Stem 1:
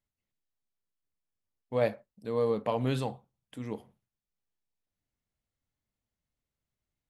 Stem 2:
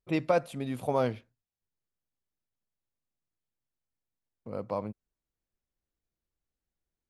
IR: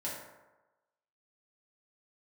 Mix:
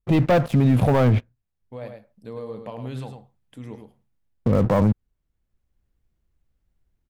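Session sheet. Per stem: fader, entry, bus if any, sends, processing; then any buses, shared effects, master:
-12.5 dB, 0.00 s, no send, echo send -7 dB, compression 2.5:1, threshold -34 dBFS, peak gain reduction 9 dB
+2.5 dB, 0.00 s, no send, no echo send, tone controls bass +6 dB, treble -15 dB; waveshaping leveller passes 3; treble shelf 10 kHz +6 dB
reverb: none
echo: delay 105 ms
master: bass shelf 150 Hz +7.5 dB; level rider gain up to 11.5 dB; peak limiter -11 dBFS, peak gain reduction 9.5 dB

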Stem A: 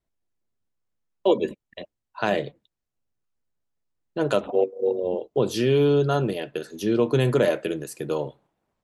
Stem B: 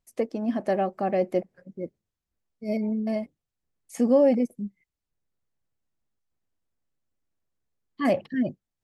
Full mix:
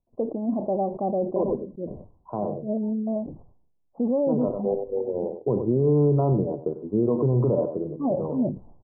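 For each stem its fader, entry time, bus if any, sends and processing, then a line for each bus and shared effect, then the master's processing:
+0.5 dB, 0.10 s, no send, echo send -13 dB, bass shelf 250 Hz +8 dB; vibrato 0.91 Hz 52 cents; auto duck -7 dB, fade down 0.55 s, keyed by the second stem
+0.5 dB, 0.00 s, no send, no echo send, peaking EQ 1.2 kHz -10 dB 0.36 oct; peak limiter -17 dBFS, peak gain reduction 6.5 dB; decay stretcher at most 87 dB/s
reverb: none
echo: delay 96 ms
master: steep low-pass 1.1 kHz 72 dB/octave; peak limiter -13.5 dBFS, peak gain reduction 7.5 dB

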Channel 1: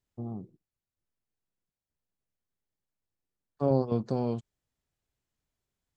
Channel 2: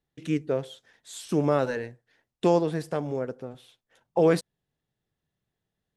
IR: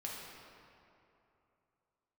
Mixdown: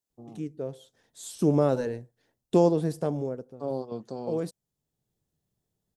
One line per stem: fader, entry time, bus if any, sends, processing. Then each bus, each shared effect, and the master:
+3.0 dB, 0.00 s, no send, high-pass 810 Hz 6 dB/octave
+3.0 dB, 0.10 s, no send, auto duck -11 dB, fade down 0.45 s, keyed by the first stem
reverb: none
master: peaking EQ 2 kHz -12.5 dB 2.1 oct

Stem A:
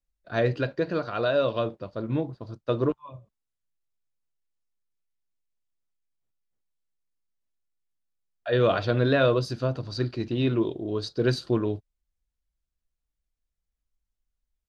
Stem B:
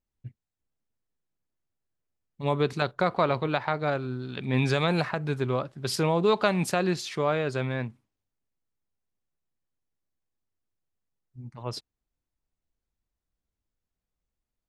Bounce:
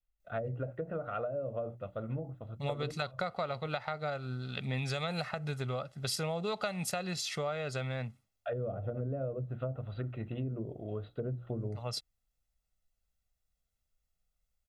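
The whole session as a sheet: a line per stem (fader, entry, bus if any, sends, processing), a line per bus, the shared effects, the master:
-6.0 dB, 0.00 s, no send, steep low-pass 3.6 kHz 72 dB/octave; hum notches 60/120/180/240/300/360 Hz; low-pass that closes with the level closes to 410 Hz, closed at -21 dBFS
-4.0 dB, 0.20 s, no send, treble shelf 2.7 kHz +7 dB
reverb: none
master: comb 1.5 ms, depth 64%; compression 4:1, threshold -33 dBFS, peak gain reduction 12.5 dB

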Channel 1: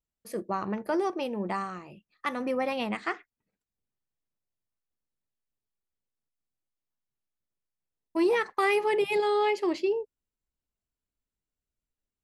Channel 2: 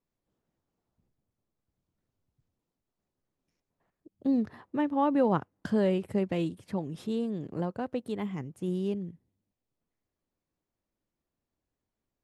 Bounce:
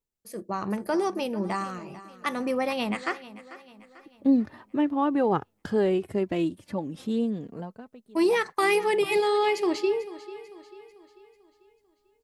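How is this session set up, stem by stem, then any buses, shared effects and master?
-6.5 dB, 0.00 s, no send, echo send -16.5 dB, tone controls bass +3 dB, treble +7 dB
-1.5 dB, 0.00 s, no send, no echo send, flange 0.18 Hz, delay 2.2 ms, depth 3 ms, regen +33%; auto duck -23 dB, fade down 0.75 s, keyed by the first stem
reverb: none
echo: feedback delay 443 ms, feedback 46%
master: level rider gain up to 8 dB

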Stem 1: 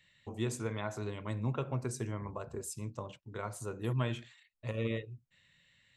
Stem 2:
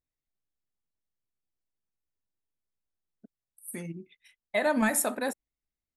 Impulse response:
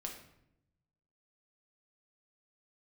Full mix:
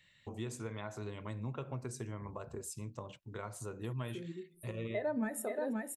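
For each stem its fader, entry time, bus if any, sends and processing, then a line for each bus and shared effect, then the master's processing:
+0.5 dB, 0.00 s, no send, no echo send, none
-2.0 dB, 0.40 s, send -13 dB, echo send -3.5 dB, expander -53 dBFS; peaking EQ 400 Hz +12 dB 0.47 oct; spectral contrast expander 1.5:1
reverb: on, RT60 0.80 s, pre-delay 6 ms
echo: delay 528 ms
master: compression 2:1, threshold -42 dBFS, peak gain reduction 12.5 dB

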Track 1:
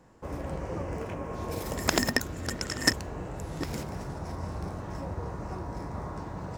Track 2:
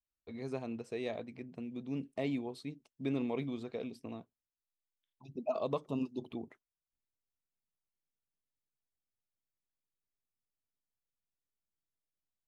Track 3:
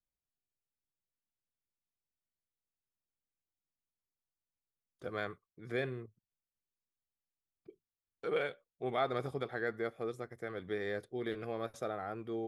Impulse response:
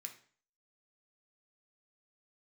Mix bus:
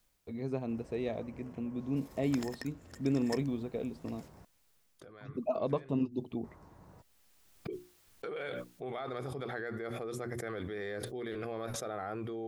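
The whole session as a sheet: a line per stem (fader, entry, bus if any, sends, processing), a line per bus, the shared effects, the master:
-19.0 dB, 0.45 s, muted 4.45–6.44 s, no send, none
+0.5 dB, 0.00 s, no send, tilt EQ -2 dB/octave
2.75 s -19 dB -> 3.11 s -10.5 dB -> 4.75 s -10.5 dB -> 5.11 s -17.5 dB -> 6.91 s -17.5 dB -> 7.62 s -10 dB, 0.00 s, no send, hum notches 60/120/180/240/300/360 Hz; level flattener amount 100%; auto duck -7 dB, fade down 0.45 s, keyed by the second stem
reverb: none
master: none

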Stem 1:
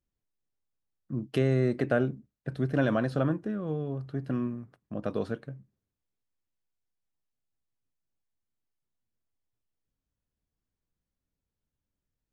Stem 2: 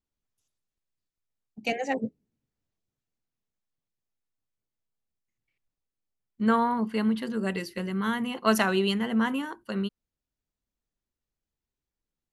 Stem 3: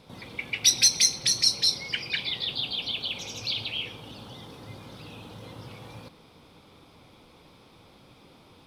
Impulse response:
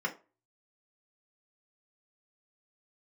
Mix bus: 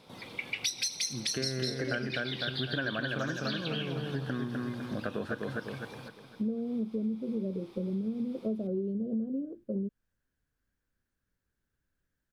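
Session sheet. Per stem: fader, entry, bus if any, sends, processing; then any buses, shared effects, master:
0.0 dB, 0.00 s, no send, echo send -4 dB, peaking EQ 1.6 kHz +14.5 dB 0.47 oct
+2.0 dB, 0.00 s, no send, no echo send, elliptic low-pass 570 Hz
-1.5 dB, 0.00 s, no send, echo send -16 dB, high-pass 190 Hz 6 dB/octave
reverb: none
echo: feedback delay 252 ms, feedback 42%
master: compression 6:1, threshold -30 dBFS, peak gain reduction 14.5 dB

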